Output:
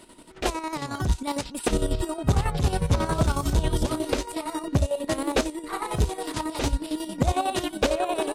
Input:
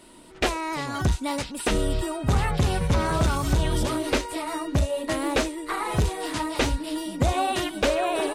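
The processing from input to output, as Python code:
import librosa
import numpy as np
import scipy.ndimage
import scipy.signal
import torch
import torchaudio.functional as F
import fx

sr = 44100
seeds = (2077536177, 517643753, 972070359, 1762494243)

y = fx.dynamic_eq(x, sr, hz=2000.0, q=1.0, threshold_db=-42.0, ratio=4.0, max_db=-5)
y = fx.chopper(y, sr, hz=11.0, depth_pct=60, duty_pct=50)
y = y * 10.0 ** (2.0 / 20.0)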